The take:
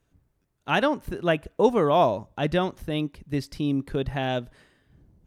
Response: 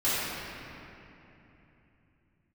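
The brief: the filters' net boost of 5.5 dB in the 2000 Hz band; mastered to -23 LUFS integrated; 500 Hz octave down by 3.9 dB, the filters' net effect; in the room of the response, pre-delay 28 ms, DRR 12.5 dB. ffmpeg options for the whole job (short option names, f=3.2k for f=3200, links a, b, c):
-filter_complex "[0:a]equalizer=f=500:t=o:g=-5.5,equalizer=f=2k:t=o:g=8,asplit=2[a][b];[1:a]atrim=start_sample=2205,adelay=28[c];[b][c]afir=irnorm=-1:irlink=0,volume=-26dB[d];[a][d]amix=inputs=2:normalize=0,volume=3dB"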